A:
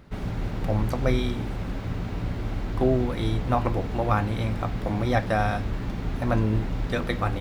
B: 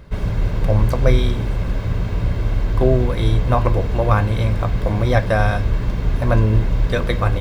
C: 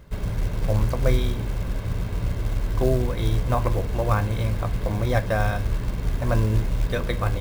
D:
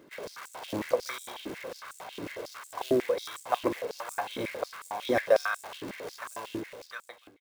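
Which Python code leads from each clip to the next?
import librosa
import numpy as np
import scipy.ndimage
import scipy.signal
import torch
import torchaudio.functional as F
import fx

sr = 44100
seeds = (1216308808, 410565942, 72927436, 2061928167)

y1 = fx.low_shelf(x, sr, hz=140.0, db=4.5)
y1 = y1 + 0.4 * np.pad(y1, (int(1.9 * sr / 1000.0), 0))[:len(y1)]
y1 = y1 * 10.0 ** (5.0 / 20.0)
y2 = fx.quant_companded(y1, sr, bits=6)
y2 = y2 * 10.0 ** (-6.0 / 20.0)
y3 = fx.fade_out_tail(y2, sr, length_s=1.29)
y3 = fx.filter_held_highpass(y3, sr, hz=11.0, low_hz=310.0, high_hz=7800.0)
y3 = y3 * 10.0 ** (-4.5 / 20.0)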